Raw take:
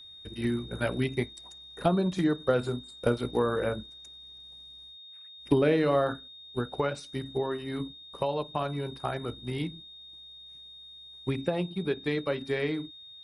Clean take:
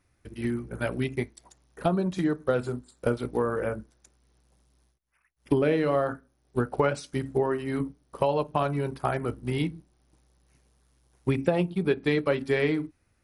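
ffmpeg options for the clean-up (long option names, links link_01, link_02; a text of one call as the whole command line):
ffmpeg -i in.wav -af "bandreject=frequency=3700:width=30,asetnsamples=nb_out_samples=441:pad=0,asendcmd='6.28 volume volume 5dB',volume=0dB" out.wav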